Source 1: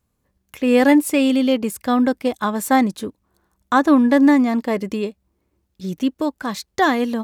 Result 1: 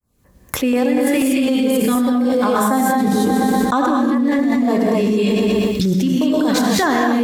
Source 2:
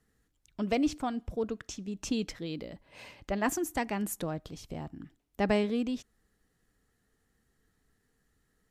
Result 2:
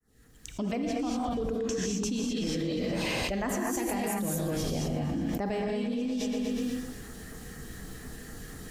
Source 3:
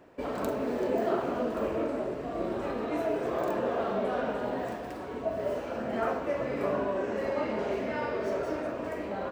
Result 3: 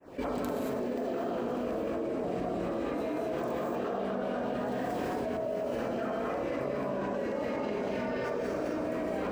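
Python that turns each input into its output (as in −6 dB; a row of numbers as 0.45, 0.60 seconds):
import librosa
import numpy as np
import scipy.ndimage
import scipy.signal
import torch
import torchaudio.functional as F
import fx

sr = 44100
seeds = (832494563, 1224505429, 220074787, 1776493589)

y = fx.fade_in_head(x, sr, length_s=1.69)
y = fx.rider(y, sr, range_db=5, speed_s=2.0)
y = fx.filter_lfo_notch(y, sr, shape='saw_down', hz=4.1, low_hz=500.0, high_hz=4700.0, q=1.2)
y = fx.echo_feedback(y, sr, ms=122, feedback_pct=57, wet_db=-15.0)
y = fx.rev_gated(y, sr, seeds[0], gate_ms=260, shape='rising', drr_db=-3.5)
y = fx.env_flatten(y, sr, amount_pct=100)
y = F.gain(torch.from_numpy(y), -11.0).numpy()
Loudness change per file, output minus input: +1.5, +2.0, −1.5 LU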